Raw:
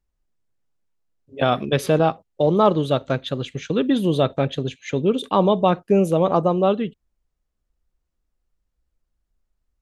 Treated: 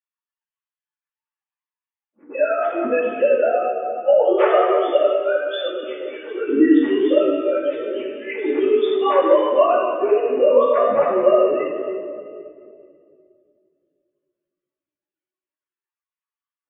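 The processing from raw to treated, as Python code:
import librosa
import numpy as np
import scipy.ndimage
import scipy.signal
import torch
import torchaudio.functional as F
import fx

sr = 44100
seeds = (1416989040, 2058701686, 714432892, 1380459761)

y = fx.sine_speech(x, sr)
y = fx.room_shoebox(y, sr, seeds[0], volume_m3=1000.0, walls='mixed', distance_m=2.4)
y = fx.stretch_vocoder_free(y, sr, factor=1.7)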